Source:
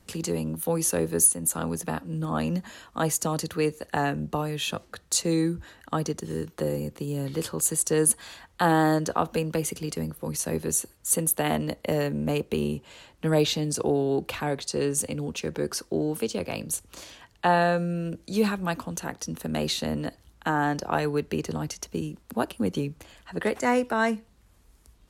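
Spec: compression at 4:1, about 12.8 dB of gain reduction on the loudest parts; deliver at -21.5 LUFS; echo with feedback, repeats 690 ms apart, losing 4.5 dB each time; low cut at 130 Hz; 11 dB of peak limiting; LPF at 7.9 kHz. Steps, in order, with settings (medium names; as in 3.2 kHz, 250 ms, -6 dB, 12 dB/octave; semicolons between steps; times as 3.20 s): high-pass 130 Hz; low-pass 7.9 kHz; compression 4:1, threshold -33 dBFS; peak limiter -27 dBFS; feedback delay 690 ms, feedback 60%, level -4.5 dB; trim +15 dB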